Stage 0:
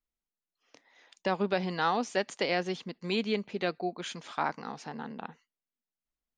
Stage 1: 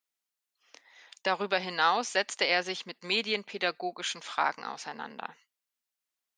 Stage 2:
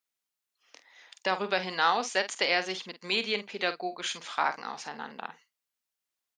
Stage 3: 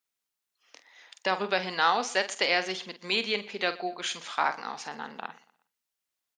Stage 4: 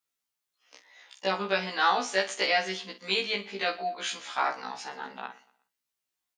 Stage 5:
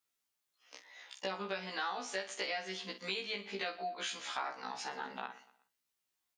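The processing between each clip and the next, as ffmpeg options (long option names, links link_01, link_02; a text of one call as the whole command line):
ffmpeg -i in.wav -af "highpass=frequency=1200:poles=1,volume=7dB" out.wav
ffmpeg -i in.wav -filter_complex "[0:a]asplit=2[link_01][link_02];[link_02]adelay=48,volume=-11.5dB[link_03];[link_01][link_03]amix=inputs=2:normalize=0" out.wav
ffmpeg -i in.wav -af "aecho=1:1:121|242|363:0.0891|0.033|0.0122,volume=1dB" out.wav
ffmpeg -i in.wav -af "afftfilt=real='re*1.73*eq(mod(b,3),0)':imag='im*1.73*eq(mod(b,3),0)':win_size=2048:overlap=0.75,volume=2dB" out.wav
ffmpeg -i in.wav -af "acompressor=threshold=-37dB:ratio=4" out.wav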